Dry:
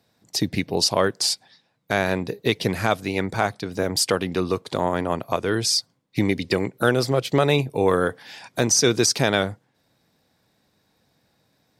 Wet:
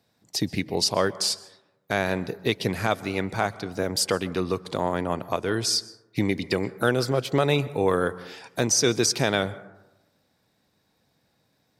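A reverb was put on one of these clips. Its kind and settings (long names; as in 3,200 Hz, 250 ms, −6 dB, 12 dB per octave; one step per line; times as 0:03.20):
dense smooth reverb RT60 0.98 s, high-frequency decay 0.3×, pre-delay 115 ms, DRR 18 dB
level −3 dB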